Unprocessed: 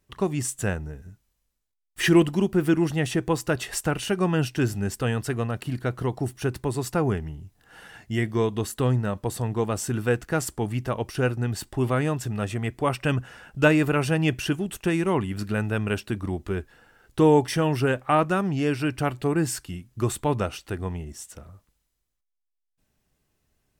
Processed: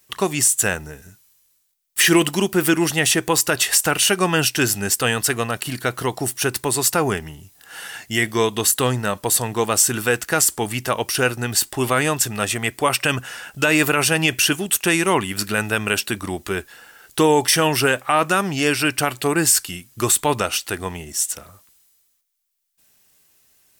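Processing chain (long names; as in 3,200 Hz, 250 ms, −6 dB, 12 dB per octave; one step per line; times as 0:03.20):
spectral tilt +3.5 dB per octave
boost into a limiter +13 dB
level −4 dB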